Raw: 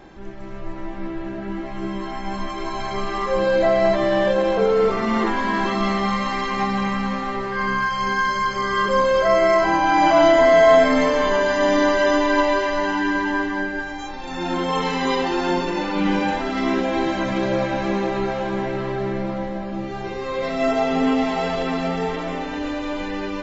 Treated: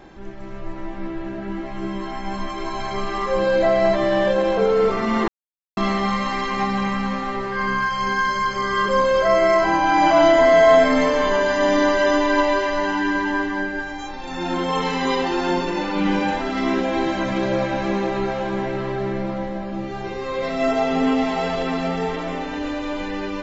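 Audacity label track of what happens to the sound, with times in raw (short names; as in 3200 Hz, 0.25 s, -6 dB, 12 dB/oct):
5.280000	5.770000	mute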